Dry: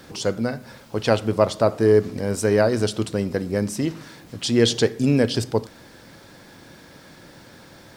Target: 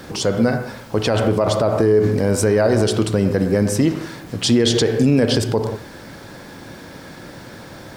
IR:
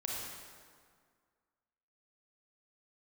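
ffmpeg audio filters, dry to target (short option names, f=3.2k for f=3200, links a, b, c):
-filter_complex "[0:a]asplit=2[a][b];[1:a]atrim=start_sample=2205,afade=t=out:st=0.24:d=0.01,atrim=end_sample=11025,lowpass=2.5k[c];[b][c]afir=irnorm=-1:irlink=0,volume=-6.5dB[d];[a][d]amix=inputs=2:normalize=0,alimiter=level_in=12dB:limit=-1dB:release=50:level=0:latency=1,volume=-5.5dB"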